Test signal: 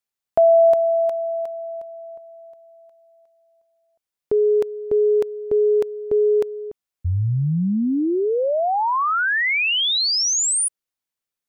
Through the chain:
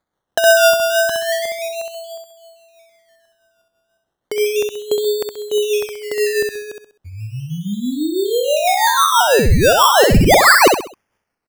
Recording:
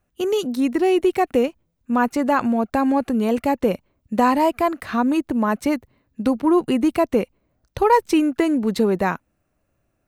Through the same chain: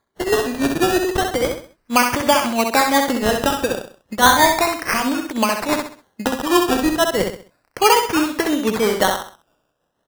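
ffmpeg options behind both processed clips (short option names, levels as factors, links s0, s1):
-filter_complex "[0:a]highpass=f=1200:p=1,agate=range=0.447:threshold=0.00891:ratio=3:release=386:detection=rms,highshelf=f=6700:g=4,asplit=2[s0][s1];[s1]acompressor=threshold=0.0316:ratio=6:release=417:detection=peak,volume=1.19[s2];[s0][s2]amix=inputs=2:normalize=0,tremolo=f=6.1:d=0.69,acrusher=samples=16:mix=1:aa=0.000001:lfo=1:lforange=9.6:lforate=0.34,asplit=2[s3][s4];[s4]aecho=0:1:65|130|195|260:0.562|0.197|0.0689|0.0241[s5];[s3][s5]amix=inputs=2:normalize=0,volume=2.51"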